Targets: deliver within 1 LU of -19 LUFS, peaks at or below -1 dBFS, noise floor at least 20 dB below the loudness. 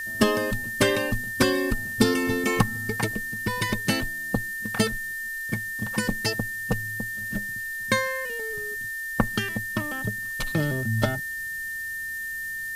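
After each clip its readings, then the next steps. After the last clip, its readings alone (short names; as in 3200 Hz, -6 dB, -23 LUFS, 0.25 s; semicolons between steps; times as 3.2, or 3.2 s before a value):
steady tone 1800 Hz; tone level -30 dBFS; noise floor -33 dBFS; noise floor target -47 dBFS; loudness -26.5 LUFS; peak -5.5 dBFS; loudness target -19.0 LUFS
-> notch 1800 Hz, Q 30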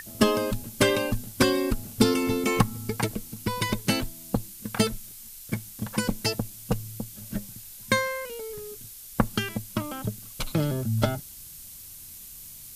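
steady tone none; noise floor -44 dBFS; noise floor target -48 dBFS
-> noise print and reduce 6 dB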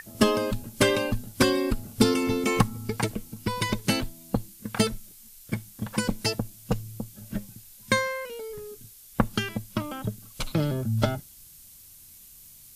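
noise floor -50 dBFS; loudness -28.0 LUFS; peak -5.5 dBFS; loudness target -19.0 LUFS
-> gain +9 dB; limiter -1 dBFS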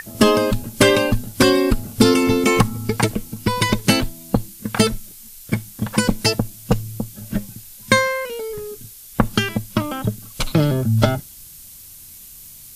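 loudness -19.5 LUFS; peak -1.0 dBFS; noise floor -41 dBFS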